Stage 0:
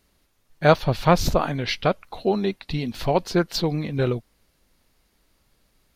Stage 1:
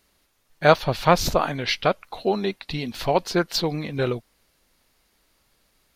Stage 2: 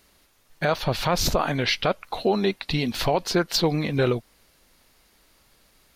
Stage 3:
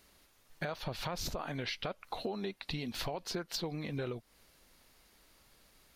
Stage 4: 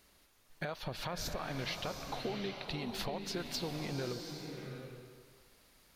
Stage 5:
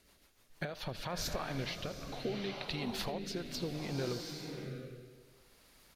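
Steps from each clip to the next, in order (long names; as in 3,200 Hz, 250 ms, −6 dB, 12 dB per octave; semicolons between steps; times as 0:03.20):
low-shelf EQ 350 Hz −7.5 dB; level +2.5 dB
in parallel at −1 dB: downward compressor, threshold −27 dBFS, peak gain reduction 17 dB; on the sum: brickwall limiter −11.5 dBFS, peak gain reduction 11 dB
downward compressor, threshold −31 dBFS, peak gain reduction 13.5 dB; level −4.5 dB
slow-attack reverb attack 770 ms, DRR 4.5 dB; level −1.5 dB
rotating-speaker cabinet horn 6.7 Hz, later 0.65 Hz, at 0:00.32; single-tap delay 81 ms −19 dB; level +2.5 dB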